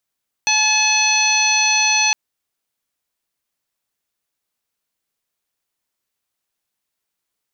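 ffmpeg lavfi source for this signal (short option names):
-f lavfi -i "aevalsrc='0.0794*sin(2*PI*858*t)+0.0355*sin(2*PI*1716*t)+0.141*sin(2*PI*2574*t)+0.0501*sin(2*PI*3432*t)+0.0891*sin(2*PI*4290*t)+0.015*sin(2*PI*5148*t)+0.119*sin(2*PI*6006*t)':d=1.66:s=44100"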